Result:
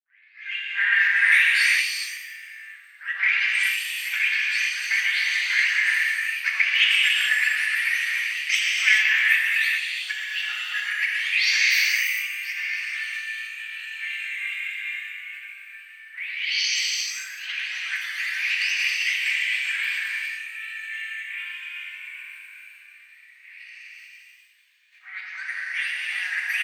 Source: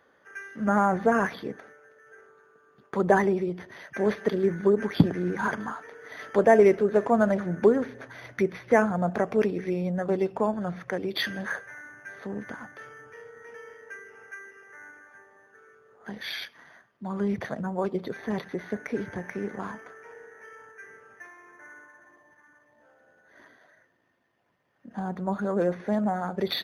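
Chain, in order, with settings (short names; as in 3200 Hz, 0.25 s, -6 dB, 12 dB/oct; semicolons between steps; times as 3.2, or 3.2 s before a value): spectral delay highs late, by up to 0.548 s; transient shaper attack -5 dB, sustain +10 dB; high shelf 4900 Hz -7.5 dB; in parallel at -2 dB: compressor, threshold -32 dBFS, peak gain reduction 16.5 dB; on the sum: Chebyshev high-pass 1300 Hz, order 5; frequency-shifting echo 0.12 s, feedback 53%, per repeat +51 Hz, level -14.5 dB; formant shift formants +5 st; non-linear reverb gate 0.47 s flat, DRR -4 dB; gain +8 dB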